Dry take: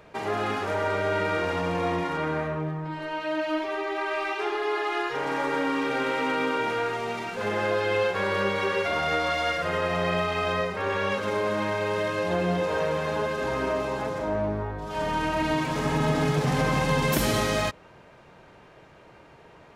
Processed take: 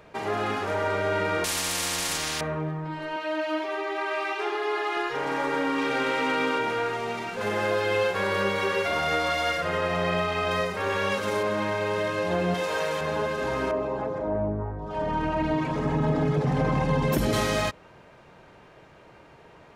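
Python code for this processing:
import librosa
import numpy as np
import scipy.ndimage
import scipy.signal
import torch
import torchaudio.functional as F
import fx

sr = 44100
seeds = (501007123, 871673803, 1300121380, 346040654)

y = fx.spectral_comp(x, sr, ratio=10.0, at=(1.44, 2.41))
y = fx.highpass(y, sr, hz=270.0, slope=12, at=(3.16, 4.97))
y = fx.peak_eq(y, sr, hz=4800.0, db=3.0, octaves=3.0, at=(5.78, 6.59))
y = fx.high_shelf(y, sr, hz=8100.0, db=8.5, at=(7.41, 9.61))
y = fx.high_shelf(y, sr, hz=5700.0, db=10.0, at=(10.51, 11.43))
y = fx.tilt_eq(y, sr, slope=2.5, at=(12.54, 13.01))
y = fx.envelope_sharpen(y, sr, power=1.5, at=(13.71, 17.33))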